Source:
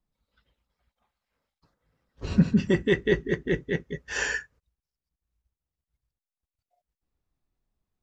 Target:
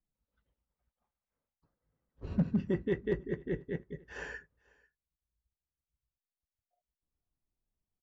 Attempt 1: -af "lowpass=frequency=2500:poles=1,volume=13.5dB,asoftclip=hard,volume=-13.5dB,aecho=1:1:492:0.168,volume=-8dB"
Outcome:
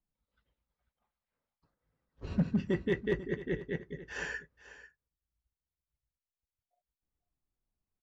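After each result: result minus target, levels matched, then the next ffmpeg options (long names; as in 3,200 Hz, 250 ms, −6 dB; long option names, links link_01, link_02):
echo-to-direct +10 dB; 2,000 Hz band +4.5 dB
-af "lowpass=frequency=2500:poles=1,volume=13.5dB,asoftclip=hard,volume=-13.5dB,aecho=1:1:492:0.0531,volume=-8dB"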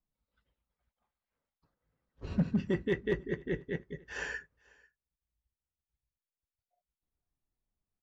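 2,000 Hz band +4.5 dB
-af "lowpass=frequency=890:poles=1,volume=13.5dB,asoftclip=hard,volume=-13.5dB,aecho=1:1:492:0.0531,volume=-8dB"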